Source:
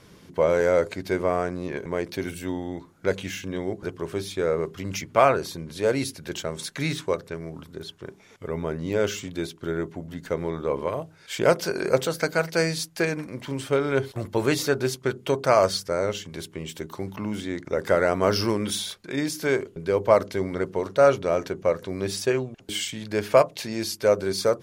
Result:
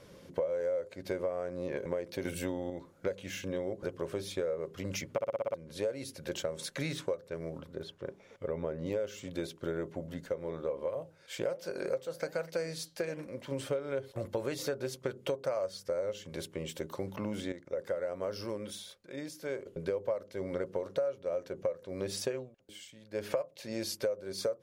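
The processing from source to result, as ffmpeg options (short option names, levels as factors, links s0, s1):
-filter_complex "[0:a]asettb=1/sr,asplit=3[s0][s1][s2];[s0]atrim=end=2.254[s3];[s1]atrim=start=2.25:end=2.7,asetpts=PTS-STARTPTS,afade=t=in:d=0.004:c=qsin,afade=t=out:st=0.446:d=0.004:c=qsin,acontrast=35[s4];[s2]atrim=start=2.696[s5];[s3][s4]acrossfade=d=0.004:c1=hsin:c2=qsin[s6];[s6][s5]acrossfade=d=0.004:c1=qsin:c2=hsin,asettb=1/sr,asplit=3[s7][s8][s9];[s7]atrim=end=7.584[s10];[s8]atrim=start=7.58:end=8.86,asetpts=PTS-STARTPTS,afade=t=in:d=0.004:c=qsin,afade=t=out:st=1.276:d=0.004:c=qsin,highshelf=f=5000:g=-9.5[s11];[s9]atrim=start=8.856[s12];[s10][s11]acrossfade=d=0.004:c1=hsin:c2=qsin[s13];[s13][s12]acrossfade=d=0.004:c1=qsin:c2=hsin,asplit=3[s14][s15][s16];[s14]afade=t=out:st=10.24:d=0.02[s17];[s15]flanger=delay=3.5:depth=5:regen=-84:speed=1.2:shape=sinusoidal,afade=t=in:st=10.24:d=0.02,afade=t=out:st=13.51:d=0.02[s18];[s16]afade=t=in:st=13.51:d=0.02[s19];[s17][s18][s19]amix=inputs=3:normalize=0,asplit=12[s20][s21][s22][s23][s24][s25][s26][s27][s28][s29][s30][s31];[s20]atrim=end=5.182[s32];[s21]atrim=start=5.118:end=5.182[s33];[s22]atrim=start=5.118:end=5.182[s34];[s23]atrim=start=5.118:end=5.182[s35];[s24]atrim=start=5.118:end=5.182[s36];[s25]atrim=start=5.118:end=5.182[s37];[s26]atrim=start=5.118:end=5.182[s38];[s27]atrim=start=5.538:end=17.522[s39];[s28]atrim=start=17.518:end=19.662,asetpts=PTS-STARTPTS,volume=0.299[s40];[s29]atrim=start=19.658:end=22.53,asetpts=PTS-STARTPTS,afade=t=out:st=2.682:d=0.19:silence=0.16788[s41];[s30]atrim=start=22.53:end=23.11,asetpts=PTS-STARTPTS,volume=0.168[s42];[s31]atrim=start=23.11,asetpts=PTS-STARTPTS,afade=t=in:d=0.19:silence=0.16788[s43];[s32][s33]acrossfade=d=0.004:c1=hsin:c2=hsin[s44];[s44][s34]acrossfade=d=0.004:c1=hsin:c2=hsin[s45];[s45][s35]acrossfade=d=0.004:c1=hsin:c2=hsin[s46];[s46][s36]acrossfade=d=0.004:c1=hsin:c2=hsin[s47];[s47][s37]acrossfade=d=0.004:c1=hsin:c2=hsin[s48];[s48][s38]acrossfade=d=0.004:c1=hsin:c2=hsin[s49];[s49][s39]acrossfade=d=0.004:c1=hsin:c2=hsin[s50];[s50][s40]acrossfade=d=0.004:c1=hsin:c2=hsin[s51];[s41][s42][s43]concat=n=3:v=0:a=1[s52];[s51][s52]acrossfade=d=0.004:c1=hsin:c2=hsin,equalizer=f=540:w=4.8:g=14.5,acompressor=threshold=0.0562:ratio=10,volume=0.531"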